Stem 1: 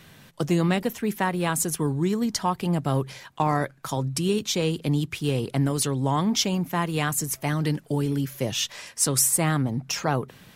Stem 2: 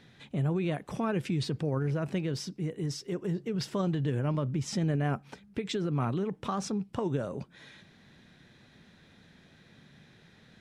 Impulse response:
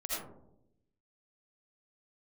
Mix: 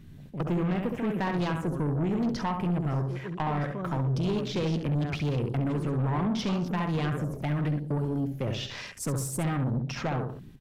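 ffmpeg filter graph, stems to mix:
-filter_complex "[0:a]deesser=0.85,lowshelf=f=82:g=10.5,acompressor=threshold=-24dB:ratio=2.5,volume=1dB,asplit=3[a][b][c];[b]volume=-20.5dB[d];[c]volume=-7dB[e];[1:a]volume=-6dB,asplit=2[f][g];[g]volume=-14.5dB[h];[2:a]atrim=start_sample=2205[i];[d][h]amix=inputs=2:normalize=0[j];[j][i]afir=irnorm=-1:irlink=0[k];[e]aecho=0:1:68|136|204|272|340:1|0.32|0.102|0.0328|0.0105[l];[a][f][k][l]amix=inputs=4:normalize=0,afwtdn=0.00794,asoftclip=type=tanh:threshold=-23dB"

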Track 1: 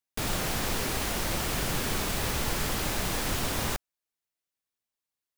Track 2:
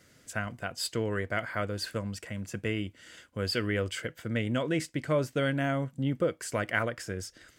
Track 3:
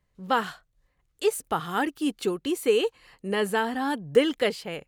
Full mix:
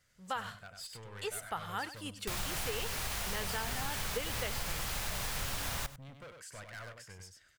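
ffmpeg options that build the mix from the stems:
-filter_complex "[0:a]adelay=2100,volume=-3.5dB,asplit=2[a][b];[b]volume=-17.5dB[c];[1:a]volume=30dB,asoftclip=hard,volume=-30dB,volume=-11dB,asplit=2[d][e];[e]volume=-5.5dB[f];[2:a]volume=-7dB,asplit=2[g][h];[h]volume=-16dB[i];[c][f][i]amix=inputs=3:normalize=0,aecho=0:1:97:1[j];[a][d][g][j]amix=inputs=4:normalize=0,equalizer=f=310:t=o:w=1.4:g=-13.5,acompressor=threshold=-32dB:ratio=6"

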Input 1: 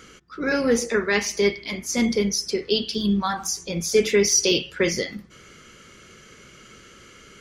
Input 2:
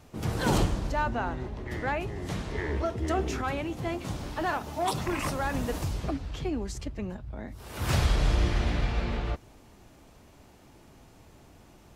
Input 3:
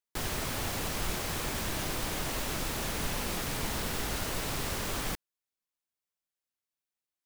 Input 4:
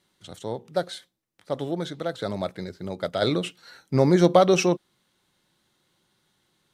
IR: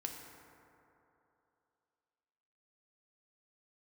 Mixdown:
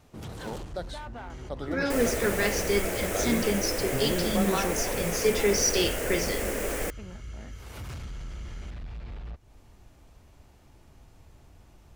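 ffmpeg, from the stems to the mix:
-filter_complex "[0:a]adelay=1300,volume=-6dB[a];[1:a]asubboost=boost=2.5:cutoff=120,acompressor=threshold=-32dB:ratio=3,volume=31dB,asoftclip=hard,volume=-31dB,volume=-4dB[b];[2:a]equalizer=f=125:t=o:w=1:g=-11,equalizer=f=500:t=o:w=1:g=12,equalizer=f=1k:t=o:w=1:g=-8,equalizer=f=2k:t=o:w=1:g=6,equalizer=f=4k:t=o:w=1:g=-12,equalizer=f=8k:t=o:w=1:g=3,adelay=1750,volume=2dB[c];[3:a]alimiter=limit=-15dB:level=0:latency=1,volume=-7.5dB[d];[a][b][c][d]amix=inputs=4:normalize=0"

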